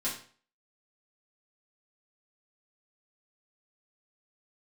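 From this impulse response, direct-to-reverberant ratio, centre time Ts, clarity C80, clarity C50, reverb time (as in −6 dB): −9.0 dB, 30 ms, 11.0 dB, 6.5 dB, 0.45 s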